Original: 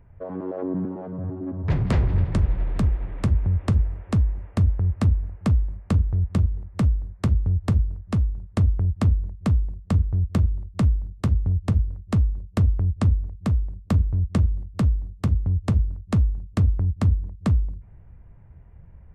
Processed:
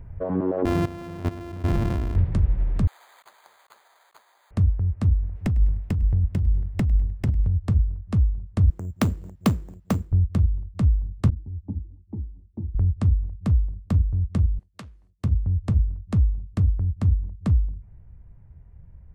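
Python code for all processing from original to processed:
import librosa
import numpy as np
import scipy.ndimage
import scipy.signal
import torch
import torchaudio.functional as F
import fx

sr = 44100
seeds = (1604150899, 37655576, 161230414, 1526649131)

y = fx.chain(x, sr, fx.sample_sort(block=128),
    fx.high_shelf(hz=3400.0, db=-12.0),
    fx.level_steps(step_db=14), at=(0.65, 2.16))
y = fx.chain(y, sr, fx.highpass(hz=830.0, slope=24),
    fx.over_compress(threshold_db=-46.0, ratio=-0.5),
    fx.resample_bad(factor=8, down='filtered', up='hold'), at=(2.87, 4.51))
y = fx.chain(y, sr, fx.lower_of_two(delay_ms=0.39),
    fx.over_compress(threshold_db=-22.0, ratio=-1.0),
    fx.echo_feedback(ms=102, feedback_pct=48, wet_db=-22.5), at=(5.35, 7.55))
y = fx.chain(y, sr, fx.highpass(hz=230.0, slope=12),
    fx.high_shelf(hz=2700.0, db=6.0),
    fx.resample_bad(factor=6, down='none', up='hold'), at=(8.7, 10.12))
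y = fx.chain(y, sr, fx.formant_cascade(vowel='u'),
    fx.ensemble(), at=(11.3, 12.75))
y = fx.chain(y, sr, fx.highpass(hz=1300.0, slope=6),
    fx.peak_eq(hz=3100.0, db=4.0, octaves=3.0), at=(14.59, 15.24))
y = fx.low_shelf(y, sr, hz=200.0, db=8.0)
y = fx.rider(y, sr, range_db=10, speed_s=0.5)
y = F.gain(torch.from_numpy(y), -5.5).numpy()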